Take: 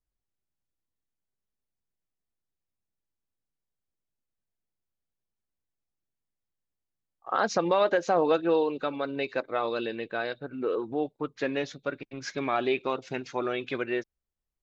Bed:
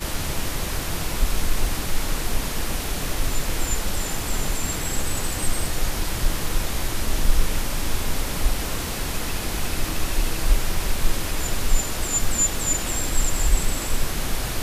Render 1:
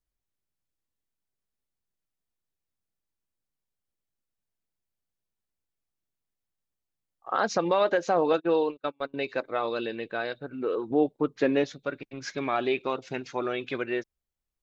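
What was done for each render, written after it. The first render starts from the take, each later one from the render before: 8.33–9.14 s: gate -31 dBFS, range -35 dB; 10.90–11.64 s: peaking EQ 310 Hz +7 dB 2.7 oct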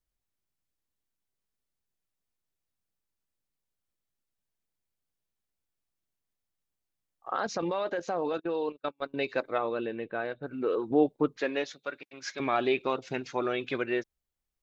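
7.31–9.06 s: level held to a coarse grid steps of 10 dB; 9.58–10.43 s: distance through air 450 m; 11.37–12.40 s: high-pass 870 Hz 6 dB/octave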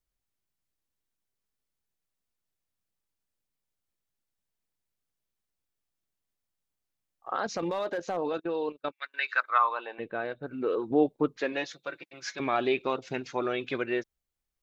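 7.55–8.17 s: overload inside the chain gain 24 dB; 8.91–9.98 s: resonant high-pass 2.1 kHz -> 770 Hz, resonance Q 5.7; 11.52–12.39 s: comb 5.9 ms, depth 60%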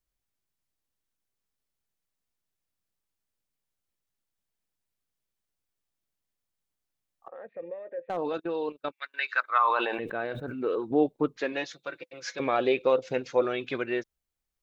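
7.28–8.10 s: cascade formant filter e; 9.61–10.68 s: decay stretcher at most 32 dB/s; 11.99–13.45 s: peaking EQ 510 Hz +14.5 dB 0.23 oct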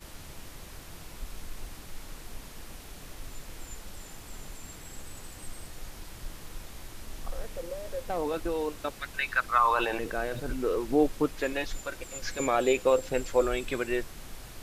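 add bed -18.5 dB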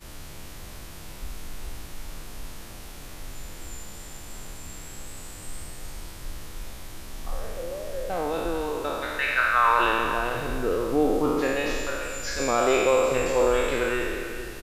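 spectral sustain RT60 1.88 s; on a send: delay 430 ms -11.5 dB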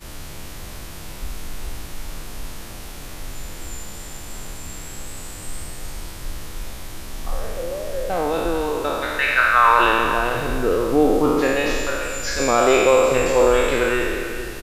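trim +6 dB

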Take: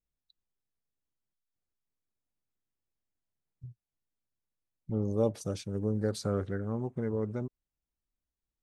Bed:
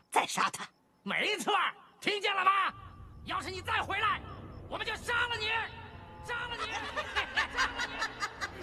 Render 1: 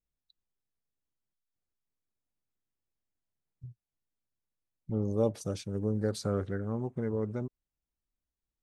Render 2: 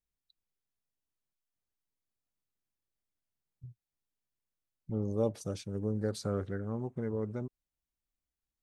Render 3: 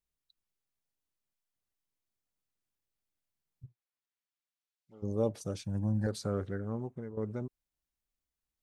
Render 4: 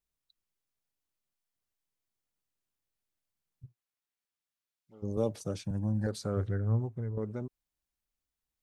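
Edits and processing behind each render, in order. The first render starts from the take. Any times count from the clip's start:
no audible change
trim -2.5 dB
3.65–5.02 s: band-pass filter 1.2 kHz -> 5 kHz, Q 0.62; 5.64–6.07 s: comb 1.2 ms, depth 95%; 6.75–7.17 s: fade out, to -12 dB
5.17–5.71 s: three bands compressed up and down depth 40%; 6.36–7.18 s: peaking EQ 110 Hz +14.5 dB 0.36 oct

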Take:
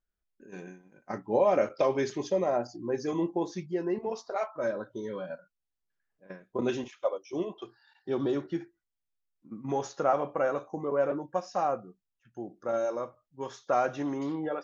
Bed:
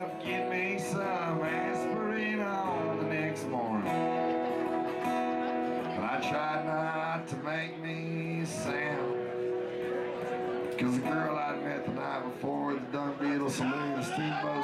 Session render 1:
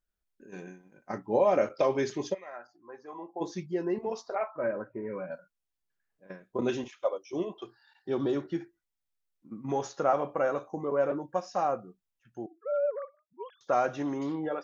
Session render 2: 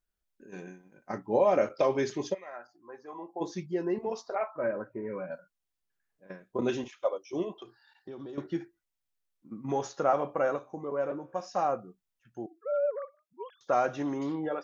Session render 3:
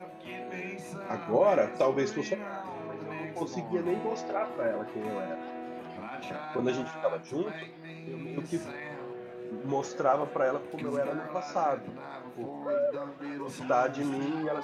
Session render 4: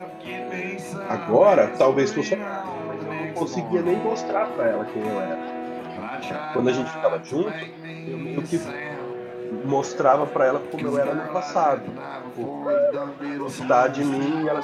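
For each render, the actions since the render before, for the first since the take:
2.33–3.40 s: band-pass filter 2.2 kHz -> 680 Hz, Q 2.9; 4.35–5.32 s: careless resampling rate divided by 8×, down none, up filtered; 12.46–13.61 s: formants replaced by sine waves
7.62–8.38 s: compression, threshold -40 dBFS; 10.56–11.40 s: feedback comb 66 Hz, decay 1.1 s, mix 40%
add bed -8 dB
trim +8.5 dB

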